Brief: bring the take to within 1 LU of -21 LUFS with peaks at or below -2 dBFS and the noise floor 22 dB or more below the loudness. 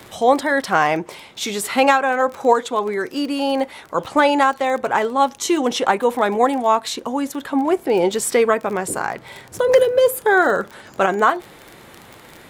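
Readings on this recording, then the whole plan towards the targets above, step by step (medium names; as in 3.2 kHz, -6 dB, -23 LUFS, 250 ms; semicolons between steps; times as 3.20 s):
tick rate 28 per s; loudness -18.5 LUFS; peak level -2.0 dBFS; loudness target -21.0 LUFS
-> de-click; trim -2.5 dB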